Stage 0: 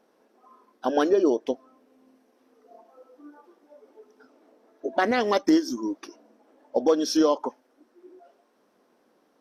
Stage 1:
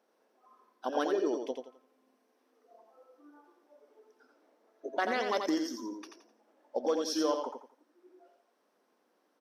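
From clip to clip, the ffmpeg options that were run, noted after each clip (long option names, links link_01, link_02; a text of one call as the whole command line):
ffmpeg -i in.wav -filter_complex "[0:a]highpass=frequency=430:poles=1,asplit=2[link_01][link_02];[link_02]aecho=0:1:86|172|258|344:0.531|0.154|0.0446|0.0129[link_03];[link_01][link_03]amix=inputs=2:normalize=0,volume=-7dB" out.wav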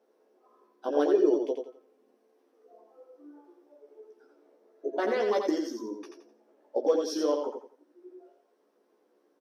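ffmpeg -i in.wav -filter_complex "[0:a]equalizer=frequency=390:width=1.2:gain=12,asplit=2[link_01][link_02];[link_02]adelay=14,volume=-3dB[link_03];[link_01][link_03]amix=inputs=2:normalize=0,volume=-4.5dB" out.wav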